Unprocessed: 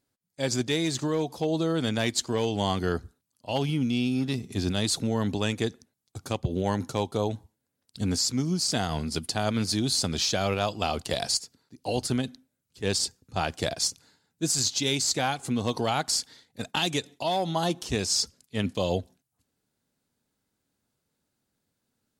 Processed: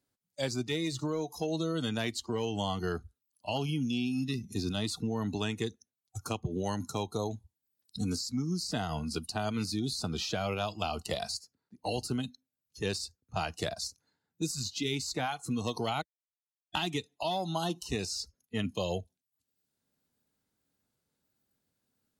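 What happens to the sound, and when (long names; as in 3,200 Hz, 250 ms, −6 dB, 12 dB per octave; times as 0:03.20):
0:16.02–0:16.75: silence
whole clip: noise reduction from a noise print of the clip's start 19 dB; dynamic equaliser 7,700 Hz, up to −5 dB, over −41 dBFS, Q 0.88; multiband upward and downward compressor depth 70%; level −5.5 dB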